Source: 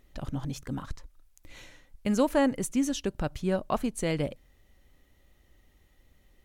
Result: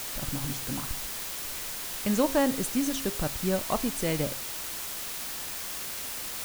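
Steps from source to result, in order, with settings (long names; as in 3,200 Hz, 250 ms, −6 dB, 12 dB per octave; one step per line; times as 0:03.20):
hum removal 135.1 Hz, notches 37
bit-depth reduction 6 bits, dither triangular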